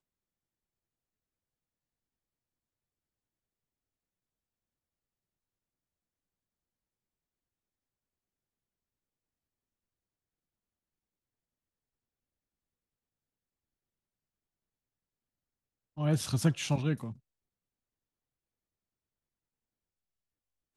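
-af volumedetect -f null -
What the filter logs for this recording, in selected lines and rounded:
mean_volume: -42.3 dB
max_volume: -16.1 dB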